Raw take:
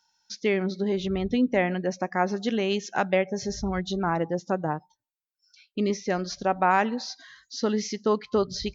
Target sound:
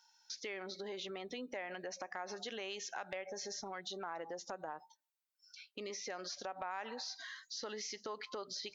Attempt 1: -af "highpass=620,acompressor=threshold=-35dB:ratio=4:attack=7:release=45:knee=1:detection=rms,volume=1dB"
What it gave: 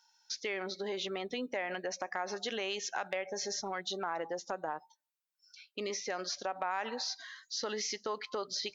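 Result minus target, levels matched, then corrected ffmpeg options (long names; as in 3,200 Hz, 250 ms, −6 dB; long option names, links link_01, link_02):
downward compressor: peak gain reduction −7 dB
-af "highpass=620,acompressor=threshold=-44.5dB:ratio=4:attack=7:release=45:knee=1:detection=rms,volume=1dB"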